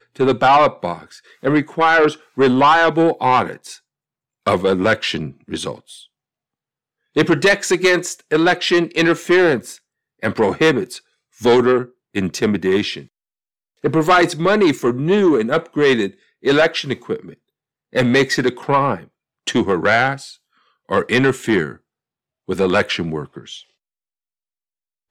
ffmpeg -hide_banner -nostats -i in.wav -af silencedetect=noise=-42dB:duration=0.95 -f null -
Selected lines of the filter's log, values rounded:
silence_start: 6.06
silence_end: 7.16 | silence_duration: 1.10
silence_start: 23.62
silence_end: 25.11 | silence_duration: 1.49